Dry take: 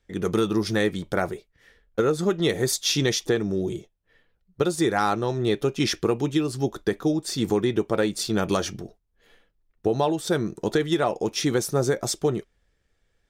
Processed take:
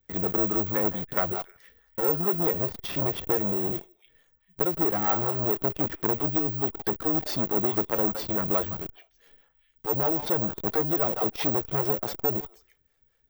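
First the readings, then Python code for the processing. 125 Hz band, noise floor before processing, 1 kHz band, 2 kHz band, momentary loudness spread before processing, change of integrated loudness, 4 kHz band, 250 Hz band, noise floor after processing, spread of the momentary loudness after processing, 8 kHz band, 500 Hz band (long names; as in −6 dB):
−5.0 dB, −72 dBFS, −2.5 dB, −7.5 dB, 5 LU, −0.5 dB, −11.5 dB, −6.0 dB, −69 dBFS, 5 LU, −16.0 dB, −5.5 dB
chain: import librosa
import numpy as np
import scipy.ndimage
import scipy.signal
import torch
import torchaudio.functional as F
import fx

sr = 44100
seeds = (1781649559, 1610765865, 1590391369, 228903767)

p1 = fx.env_lowpass_down(x, sr, base_hz=1100.0, full_db=-19.0)
p2 = fx.echo_stepped(p1, sr, ms=161, hz=1000.0, octaves=1.4, feedback_pct=70, wet_db=-5.0)
p3 = fx.harmonic_tremolo(p2, sr, hz=4.6, depth_pct=70, crossover_hz=420.0)
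p4 = fx.schmitt(p3, sr, flips_db=-40.5)
p5 = p3 + (p4 * 10.0 ** (-10.0 / 20.0))
p6 = (np.kron(p5[::2], np.eye(2)[0]) * 2)[:len(p5)]
y = fx.transformer_sat(p6, sr, knee_hz=1900.0)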